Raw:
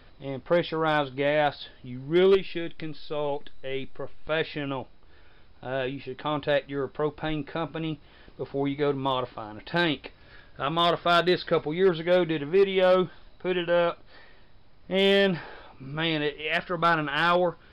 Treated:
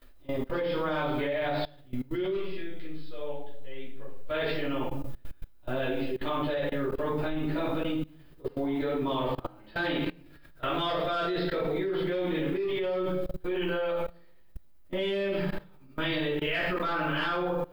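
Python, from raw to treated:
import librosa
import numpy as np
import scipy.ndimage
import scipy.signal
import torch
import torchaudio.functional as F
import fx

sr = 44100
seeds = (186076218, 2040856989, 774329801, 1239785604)

y = fx.dmg_noise_colour(x, sr, seeds[0], colour='violet', level_db=-60.0)
y = fx.room_shoebox(y, sr, seeds[1], volume_m3=150.0, walls='mixed', distance_m=2.9)
y = fx.level_steps(y, sr, step_db=22)
y = F.gain(torch.from_numpy(y), -7.0).numpy()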